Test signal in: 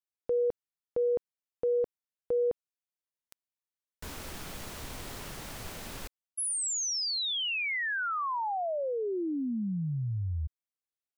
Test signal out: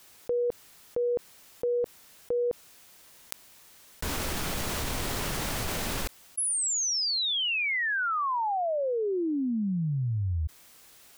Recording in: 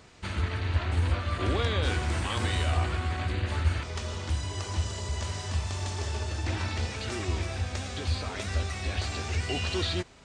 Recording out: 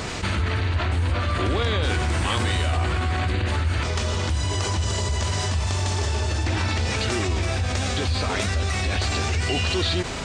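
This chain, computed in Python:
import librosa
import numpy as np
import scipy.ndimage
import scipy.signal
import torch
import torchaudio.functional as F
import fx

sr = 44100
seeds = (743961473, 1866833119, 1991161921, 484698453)

y = fx.env_flatten(x, sr, amount_pct=70)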